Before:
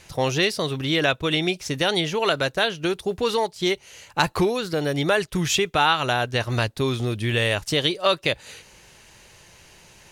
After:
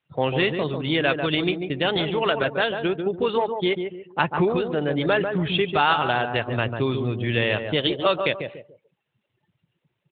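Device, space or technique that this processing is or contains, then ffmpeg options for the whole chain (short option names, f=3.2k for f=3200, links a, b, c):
mobile call with aggressive noise cancelling: -filter_complex "[0:a]asettb=1/sr,asplit=3[a][b][c];[a]atrim=end=1.274[d];[b]atrim=start=1.27:end=1.86,asetpts=PTS-STARTPTS,afade=t=in:d=0.004:c=qsin,afade=t=out:st=0.586:d=0.004:c=qsin,equalizer=f=6.7k:w=6.6:g=3[e];[c]atrim=start=1.856[f];[d][e]acrossfade=d=0.004:c1=hsin:c2=qsin[g];[g][f]acrossfade=d=0.004:c1=qsin:c2=hsin,highpass=110,asplit=2[h][i];[i]adelay=144,lowpass=f=1.3k:p=1,volume=-5dB,asplit=2[j][k];[k]adelay=144,lowpass=f=1.3k:p=1,volume=0.36,asplit=2[l][m];[m]adelay=144,lowpass=f=1.3k:p=1,volume=0.36,asplit=2[n][o];[o]adelay=144,lowpass=f=1.3k:p=1,volume=0.36[p];[h][j][l][n][p]amix=inputs=5:normalize=0,afftdn=nr=28:nf=-40" -ar 8000 -c:a libopencore_amrnb -b:a 12200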